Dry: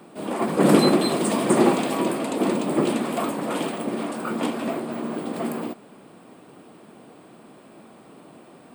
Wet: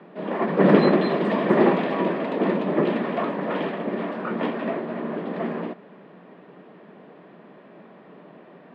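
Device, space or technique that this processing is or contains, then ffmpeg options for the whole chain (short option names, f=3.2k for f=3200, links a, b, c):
guitar cabinet: -af "highpass=97,equalizer=f=110:t=q:w=4:g=-5,equalizer=f=180:t=q:w=4:g=9,equalizer=f=420:t=q:w=4:g=6,equalizer=f=600:t=q:w=4:g=6,equalizer=f=1k:t=q:w=4:g=4,equalizer=f=1.8k:t=q:w=4:g=10,lowpass=f=3.5k:w=0.5412,lowpass=f=3.5k:w=1.3066,volume=-3.5dB"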